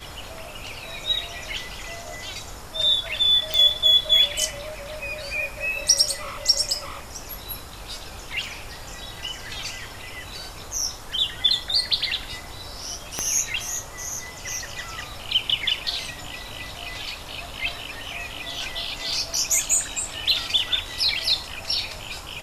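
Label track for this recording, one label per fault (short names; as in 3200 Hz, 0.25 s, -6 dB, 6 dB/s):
3.540000	3.540000	pop
8.460000	8.460000	gap 2.2 ms
13.190000	13.190000	pop -9 dBFS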